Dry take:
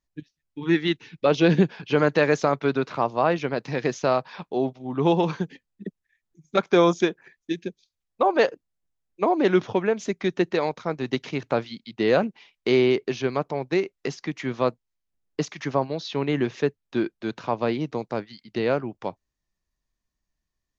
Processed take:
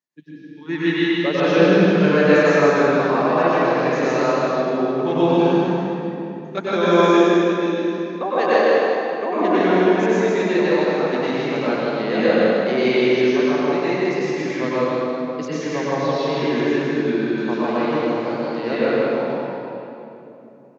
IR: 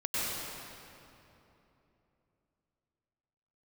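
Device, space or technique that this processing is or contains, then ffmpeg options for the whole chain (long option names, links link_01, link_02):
stadium PA: -filter_complex "[0:a]highpass=frequency=160:width=0.5412,highpass=frequency=160:width=1.3066,equalizer=frequency=1700:width_type=o:width=0.31:gain=3.5,aecho=1:1:157.4|259.5:0.631|0.282[link_01];[1:a]atrim=start_sample=2205[link_02];[link_01][link_02]afir=irnorm=-1:irlink=0,volume=-4dB"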